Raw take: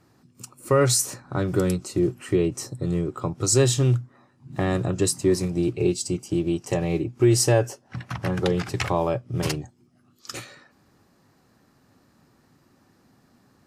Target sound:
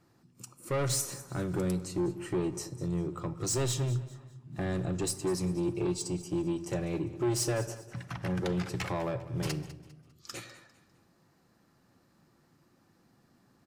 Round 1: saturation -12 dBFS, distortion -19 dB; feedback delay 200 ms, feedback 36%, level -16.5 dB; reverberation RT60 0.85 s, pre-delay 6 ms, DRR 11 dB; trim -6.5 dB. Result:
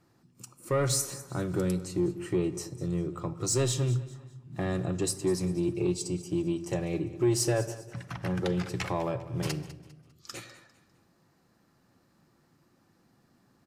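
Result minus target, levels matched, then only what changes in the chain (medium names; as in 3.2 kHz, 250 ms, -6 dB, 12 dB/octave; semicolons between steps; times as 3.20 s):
saturation: distortion -9 dB
change: saturation -19.5 dBFS, distortion -10 dB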